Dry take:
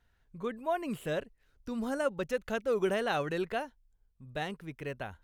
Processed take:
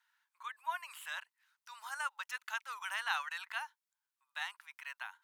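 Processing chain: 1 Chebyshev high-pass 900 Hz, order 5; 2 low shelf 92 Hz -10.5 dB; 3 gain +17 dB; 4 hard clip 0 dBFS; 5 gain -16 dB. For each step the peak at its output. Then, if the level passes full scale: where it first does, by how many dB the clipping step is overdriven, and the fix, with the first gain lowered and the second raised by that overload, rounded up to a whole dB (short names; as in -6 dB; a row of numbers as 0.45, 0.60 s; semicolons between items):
-21.5, -21.5, -4.5, -4.5, -20.5 dBFS; no overload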